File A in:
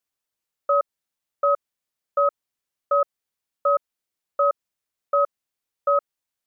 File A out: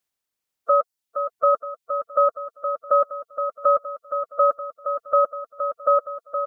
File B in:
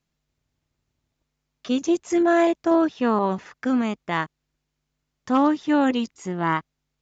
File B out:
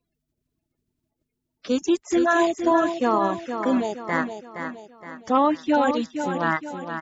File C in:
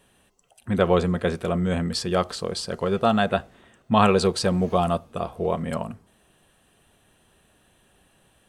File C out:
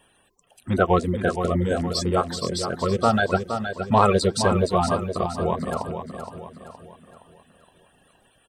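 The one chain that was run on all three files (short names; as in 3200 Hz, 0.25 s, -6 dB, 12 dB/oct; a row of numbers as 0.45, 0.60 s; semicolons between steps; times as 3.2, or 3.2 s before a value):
bin magnitudes rounded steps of 30 dB; reverb removal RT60 0.69 s; on a send: feedback echo 0.468 s, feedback 44%, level -8 dB; on the sum: match loudness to -23 LUFS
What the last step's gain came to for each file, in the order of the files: +3.5, +0.5, +2.0 dB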